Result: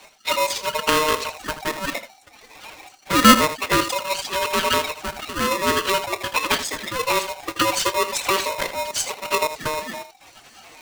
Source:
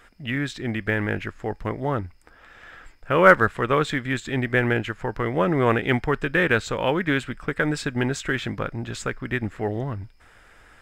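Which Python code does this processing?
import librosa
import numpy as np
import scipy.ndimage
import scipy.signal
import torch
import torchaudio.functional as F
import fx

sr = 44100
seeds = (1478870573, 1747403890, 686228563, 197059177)

y = fx.spec_dropout(x, sr, seeds[0], share_pct=30)
y = fx.rider(y, sr, range_db=4, speed_s=2.0)
y = fx.tilt_eq(y, sr, slope=3.0)
y = fx.pitch_keep_formants(y, sr, semitones=6.5)
y = fx.bass_treble(y, sr, bass_db=8, treble_db=7)
y = fx.env_flanger(y, sr, rest_ms=5.7, full_db=-18.0)
y = scipy.signal.sosfilt(scipy.signal.butter(4, 6800.0, 'lowpass', fs=sr, output='sos'), y)
y = fx.room_early_taps(y, sr, ms=(29, 80), db=(-14.5, -11.5))
y = y * np.sign(np.sin(2.0 * np.pi * 770.0 * np.arange(len(y)) / sr))
y = y * 10.0 ** (4.0 / 20.0)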